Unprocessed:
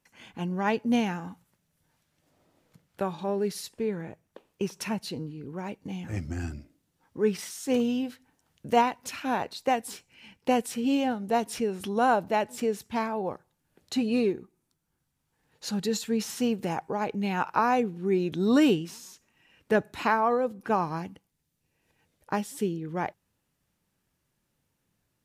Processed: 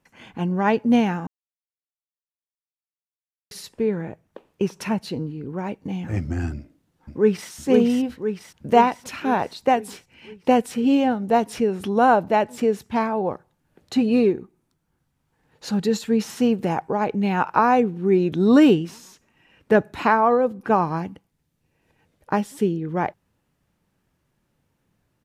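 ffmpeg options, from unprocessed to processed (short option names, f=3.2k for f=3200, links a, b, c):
-filter_complex "[0:a]asplit=2[a][b];[b]afade=t=in:st=6.56:d=0.01,afade=t=out:st=7.5:d=0.01,aecho=0:1:510|1020|1530|2040|2550|3060|3570|4080|4590:0.668344|0.401006|0.240604|0.144362|0.0866174|0.0519704|0.0311823|0.0187094|0.0112256[c];[a][c]amix=inputs=2:normalize=0,asplit=3[d][e][f];[d]atrim=end=1.27,asetpts=PTS-STARTPTS,afade=t=out:st=1.266:d=0.004:c=hsin[g];[e]atrim=start=1.27:end=3.51,asetpts=PTS-STARTPTS,volume=0[h];[f]atrim=start=3.51,asetpts=PTS-STARTPTS,afade=t=in:d=0.004:c=hsin[i];[g][h][i]concat=n=3:v=0:a=1,highshelf=f=3k:g=-9.5,volume=7.5dB"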